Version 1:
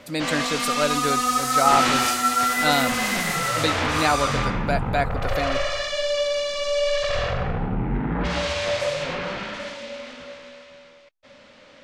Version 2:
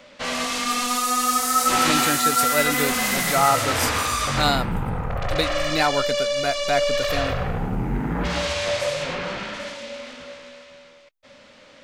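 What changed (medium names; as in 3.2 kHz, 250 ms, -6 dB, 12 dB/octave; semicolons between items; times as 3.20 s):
speech: entry +1.75 s; master: add treble shelf 9.2 kHz +11 dB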